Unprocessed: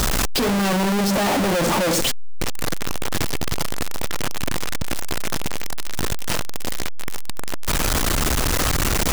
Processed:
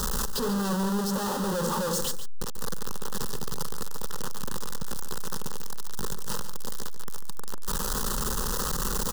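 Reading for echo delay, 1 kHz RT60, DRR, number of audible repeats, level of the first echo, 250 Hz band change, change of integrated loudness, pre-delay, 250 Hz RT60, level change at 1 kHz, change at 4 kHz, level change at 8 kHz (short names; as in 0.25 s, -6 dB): 0.143 s, none, none, 1, -11.0 dB, -8.0 dB, -8.5 dB, none, none, -8.0 dB, -10.5 dB, -7.0 dB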